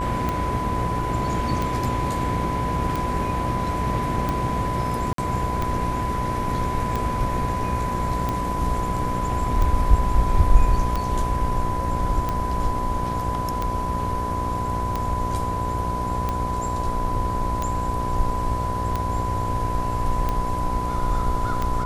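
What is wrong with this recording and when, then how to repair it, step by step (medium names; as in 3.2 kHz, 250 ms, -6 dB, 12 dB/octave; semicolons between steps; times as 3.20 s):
buzz 60 Hz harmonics 18 -29 dBFS
tick 45 rpm -12 dBFS
whine 1 kHz -26 dBFS
5.13–5.18 s: dropout 53 ms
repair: de-click; de-hum 60 Hz, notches 18; band-stop 1 kHz, Q 30; interpolate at 5.13 s, 53 ms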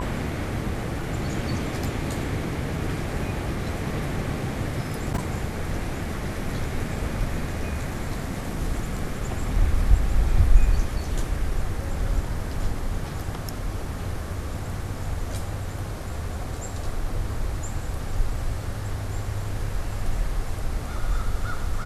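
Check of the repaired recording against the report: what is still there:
nothing left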